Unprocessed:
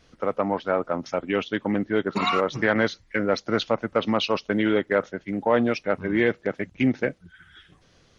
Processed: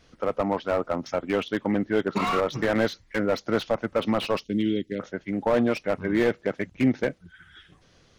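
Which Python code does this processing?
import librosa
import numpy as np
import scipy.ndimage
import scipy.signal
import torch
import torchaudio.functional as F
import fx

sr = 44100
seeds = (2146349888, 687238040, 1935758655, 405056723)

y = fx.cheby1_bandstop(x, sr, low_hz=290.0, high_hz=3500.0, order=2, at=(4.43, 4.99), fade=0.02)
y = fx.slew_limit(y, sr, full_power_hz=93.0)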